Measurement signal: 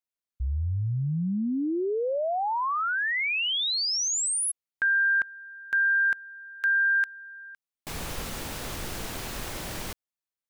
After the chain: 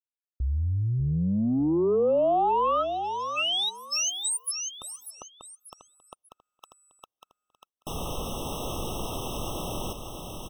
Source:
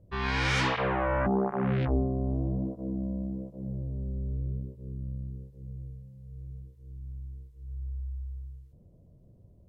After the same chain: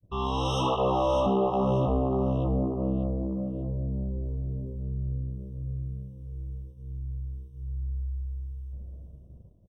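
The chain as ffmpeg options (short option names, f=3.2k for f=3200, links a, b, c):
-filter_complex "[0:a]highshelf=f=6.4k:g=-2,aecho=1:1:591|1182|1773:0.422|0.11|0.0285,adynamicequalizer=threshold=0.00891:dfrequency=570:dqfactor=0.77:tfrequency=570:tqfactor=0.77:attack=5:release=100:ratio=0.375:range=3.5:mode=boostabove:tftype=bell,asplit=2[a][b];[b]acompressor=threshold=-35dB:ratio=6:attack=0.97:release=540:knee=1:detection=peak,volume=-2dB[c];[a][c]amix=inputs=2:normalize=0,agate=range=-33dB:threshold=-46dB:ratio=3:release=81:detection=peak,asoftclip=type=tanh:threshold=-18dB,afftfilt=real='re*eq(mod(floor(b*sr/1024/1300),2),0)':imag='im*eq(mod(floor(b*sr/1024/1300),2),0)':win_size=1024:overlap=0.75"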